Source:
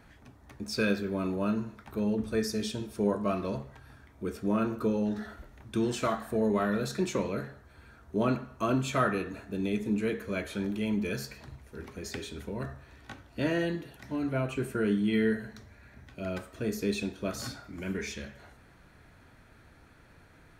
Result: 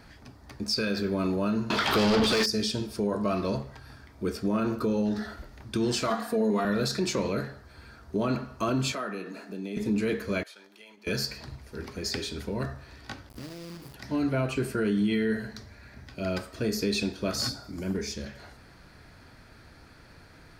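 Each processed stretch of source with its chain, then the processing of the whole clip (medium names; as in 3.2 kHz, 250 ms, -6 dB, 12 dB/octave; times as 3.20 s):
1.70–2.46 s: peaking EQ 3.2 kHz +13.5 dB 0.45 oct + overdrive pedal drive 35 dB, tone 4.1 kHz, clips at -15.5 dBFS
6.10–6.65 s: high-pass 170 Hz + comb 4.2 ms, depth 79%
8.92–9.77 s: Chebyshev high-pass 180 Hz, order 4 + band-stop 3.6 kHz, Q 19 + compression 2:1, threshold -43 dBFS
10.43–11.07 s: high-pass 750 Hz + gate -46 dBFS, range -11 dB + compression 4:1, threshold -55 dBFS
13.29–13.94 s: FFT filter 150 Hz 0 dB, 420 Hz -7 dB, 6.5 kHz -27 dB, 10 kHz +1 dB + compression 8:1, threshold -44 dBFS + companded quantiser 4-bit
17.49–18.26 s: peaking EQ 2.3 kHz -10.5 dB 1.9 oct + hard clipper -28 dBFS + tape noise reduction on one side only encoder only
whole clip: peaking EQ 4.8 kHz +12 dB 0.36 oct; peak limiter -23 dBFS; trim +4.5 dB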